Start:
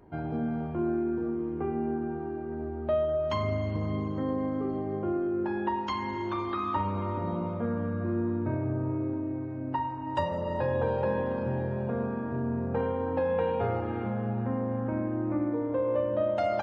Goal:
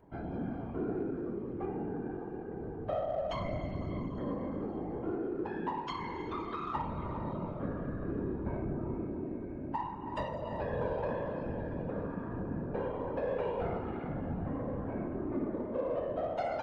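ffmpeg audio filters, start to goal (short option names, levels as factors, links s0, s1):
-filter_complex "[0:a]afftfilt=real='hypot(re,im)*cos(2*PI*random(0))':imag='hypot(re,im)*sin(2*PI*random(1))':win_size=512:overlap=0.75,asplit=2[s0][s1];[s1]asoftclip=type=tanh:threshold=0.0126,volume=0.299[s2];[s0][s2]amix=inputs=2:normalize=0,volume=0.841"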